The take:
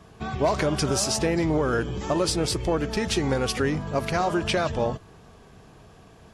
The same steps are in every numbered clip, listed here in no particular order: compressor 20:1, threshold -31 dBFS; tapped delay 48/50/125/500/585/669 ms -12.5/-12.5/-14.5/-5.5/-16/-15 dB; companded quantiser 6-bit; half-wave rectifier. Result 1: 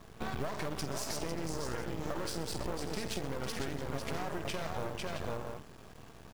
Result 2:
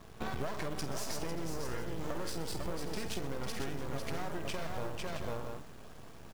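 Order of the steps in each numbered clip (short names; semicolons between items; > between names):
tapped delay > half-wave rectifier > compressor > companded quantiser; half-wave rectifier > tapped delay > companded quantiser > compressor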